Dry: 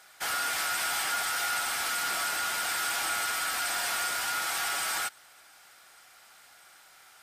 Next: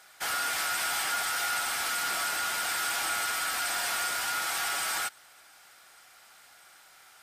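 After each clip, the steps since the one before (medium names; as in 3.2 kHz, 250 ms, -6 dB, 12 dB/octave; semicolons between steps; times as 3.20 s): no audible change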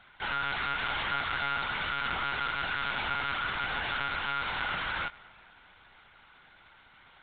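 on a send at -20 dB: reverberation RT60 3.0 s, pre-delay 76 ms; on the sum: monotone LPC vocoder at 8 kHz 140 Hz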